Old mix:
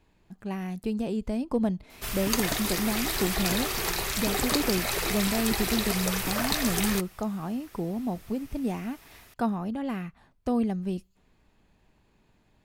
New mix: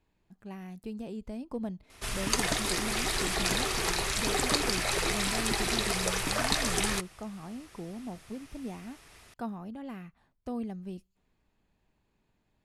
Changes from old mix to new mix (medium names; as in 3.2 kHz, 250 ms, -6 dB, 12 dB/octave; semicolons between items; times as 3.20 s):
speech -9.5 dB; background: add steep low-pass 11 kHz 36 dB/octave